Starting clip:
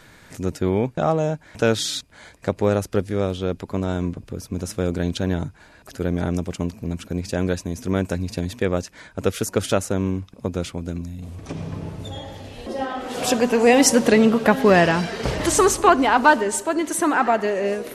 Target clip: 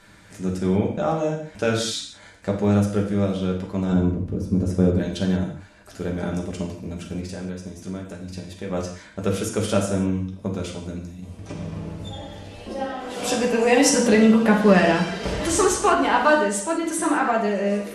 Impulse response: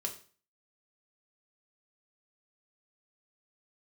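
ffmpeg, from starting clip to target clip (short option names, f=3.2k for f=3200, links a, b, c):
-filter_complex "[0:a]asettb=1/sr,asplit=3[a][b][c];[a]atrim=end=3.924[d];[b]atrim=start=3.92:end=4.98,asetpts=PTS-STARTPTS,afade=t=in:d=0.004:c=qsin,afade=t=out:st=1.056:d=0.004:c=qsin,tiltshelf=f=1.1k:g=8.5[e];[c]atrim=start=4.976[f];[d][e]acrossfade=d=0.004:c1=hsin:c2=qsin[g];[g][f]acrossfade=d=0.004:c1=qsin:c2=hsin,asplit=3[h][i][j];[h]afade=t=out:st=7.25:d=0.02[k];[i]acompressor=threshold=-28dB:ratio=6,afade=t=in:st=7.25:d=0.02,afade=t=out:st=8.69:d=0.02[l];[j]afade=t=in:st=8.69:d=0.02[m];[k][l][m]amix=inputs=3:normalize=0[n];[1:a]atrim=start_sample=2205,atrim=end_sample=4410,asetrate=22050,aresample=44100[o];[n][o]afir=irnorm=-1:irlink=0,volume=-7dB"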